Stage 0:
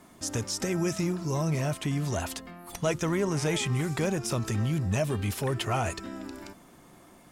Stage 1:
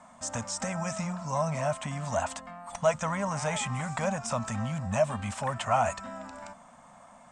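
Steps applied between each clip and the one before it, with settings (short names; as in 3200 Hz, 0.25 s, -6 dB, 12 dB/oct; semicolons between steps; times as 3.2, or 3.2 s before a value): EQ curve 140 Hz 0 dB, 240 Hz +6 dB, 350 Hz -22 dB, 580 Hz +11 dB, 1000 Hz +13 dB, 1800 Hz +6 dB, 4700 Hz -1 dB, 8300 Hz +9 dB, 12000 Hz -25 dB; gain -6 dB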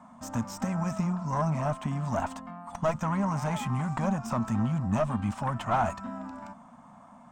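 tube stage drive 21 dB, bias 0.65; ten-band EQ 125 Hz +3 dB, 250 Hz +9 dB, 500 Hz -6 dB, 1000 Hz +4 dB, 2000 Hz -5 dB, 4000 Hz -4 dB, 8000 Hz -10 dB; gain +3 dB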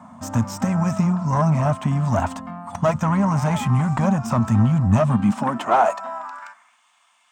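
high-pass sweep 89 Hz -> 2900 Hz, 4.94–6.81; gain +7.5 dB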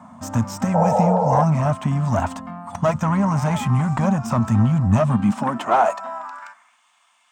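painted sound noise, 0.74–1.44, 450–940 Hz -19 dBFS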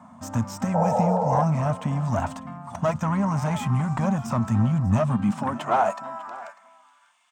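echo 0.595 s -19 dB; gain -4.5 dB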